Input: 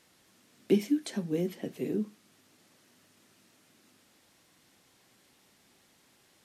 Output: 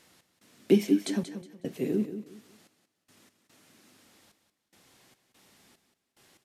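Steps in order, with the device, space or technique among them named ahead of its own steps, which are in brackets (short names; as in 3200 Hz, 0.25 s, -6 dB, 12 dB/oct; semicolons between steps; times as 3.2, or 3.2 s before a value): trance gate with a delay (step gate "x.xxxx..xx.xx.." 73 bpm -24 dB; feedback echo 0.183 s, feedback 26%, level -10.5 dB); gain +3.5 dB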